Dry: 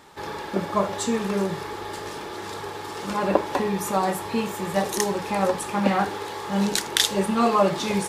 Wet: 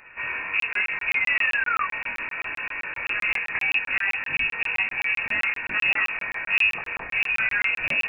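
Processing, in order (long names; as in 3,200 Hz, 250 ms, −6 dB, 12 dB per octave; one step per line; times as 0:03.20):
sub-octave generator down 1 octave, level +3 dB
in parallel at −2 dB: brickwall limiter −13 dBFS, peak gain reduction 11.5 dB
on the sum: downward compressor 2 to 1, threshold −20 dBFS, peak gain reduction 6.5 dB
sound drawn into the spectrogram rise, 0:01.08–0:01.85, 510–1,600 Hz −21 dBFS
gain into a clipping stage and back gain 15.5 dB
chorus effect 0.46 Hz, delay 20 ms, depth 2.6 ms
voice inversion scrambler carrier 2,700 Hz
regular buffer underruns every 0.13 s, samples 1,024, zero, from 0:00.60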